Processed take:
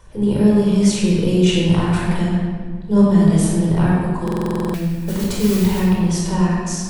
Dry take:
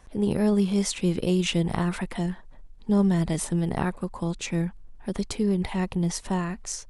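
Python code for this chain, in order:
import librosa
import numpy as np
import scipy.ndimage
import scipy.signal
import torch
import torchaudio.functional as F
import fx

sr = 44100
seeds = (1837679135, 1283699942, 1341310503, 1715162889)

p1 = fx.notch(x, sr, hz=2000.0, q=14.0)
p2 = fx.level_steps(p1, sr, step_db=19)
p3 = p1 + F.gain(torch.from_numpy(p2), 1.0).numpy()
p4 = fx.mod_noise(p3, sr, seeds[0], snr_db=11, at=(4.59, 5.8))
p5 = fx.room_shoebox(p4, sr, seeds[1], volume_m3=2000.0, walls='mixed', distance_m=4.8)
p6 = fx.buffer_glitch(p5, sr, at_s=(4.23,), block=2048, repeats=10)
y = F.gain(torch.from_numpy(p6), -3.0).numpy()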